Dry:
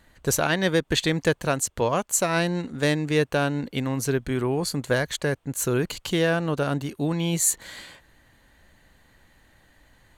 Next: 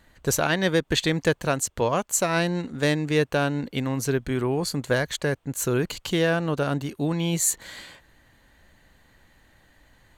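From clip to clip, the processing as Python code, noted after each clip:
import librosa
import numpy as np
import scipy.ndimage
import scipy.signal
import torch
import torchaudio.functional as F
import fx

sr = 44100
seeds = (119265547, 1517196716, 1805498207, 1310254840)

y = fx.peak_eq(x, sr, hz=10000.0, db=-3.0, octaves=0.38)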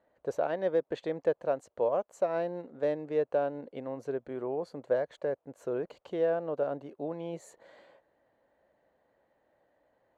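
y = fx.bandpass_q(x, sr, hz=570.0, q=2.7)
y = y * librosa.db_to_amplitude(-1.0)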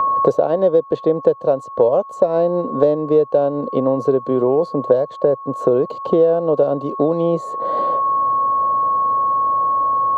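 y = fx.graphic_eq(x, sr, hz=(125, 250, 500, 1000, 2000, 4000), db=(11, 7, 9, 5, -10, 8))
y = y + 10.0 ** (-39.0 / 20.0) * np.sin(2.0 * np.pi * 1100.0 * np.arange(len(y)) / sr)
y = fx.band_squash(y, sr, depth_pct=100)
y = y * librosa.db_to_amplitude(5.5)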